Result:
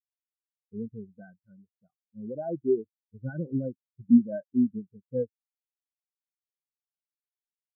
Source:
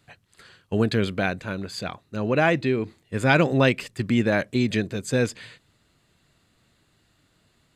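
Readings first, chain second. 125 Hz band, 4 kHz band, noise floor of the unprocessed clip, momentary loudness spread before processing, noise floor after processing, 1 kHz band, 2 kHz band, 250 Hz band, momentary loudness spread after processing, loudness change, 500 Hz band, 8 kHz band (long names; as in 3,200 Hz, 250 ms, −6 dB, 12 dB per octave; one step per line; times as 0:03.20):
−13.5 dB, below −40 dB, −66 dBFS, 12 LU, below −85 dBFS, below −20 dB, below −25 dB, −2.5 dB, 21 LU, −5.0 dB, −8.5 dB, below −40 dB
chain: Chebyshev low-pass filter 1,600 Hz, order 6
boost into a limiter +16 dB
every bin expanded away from the loudest bin 4 to 1
level −8.5 dB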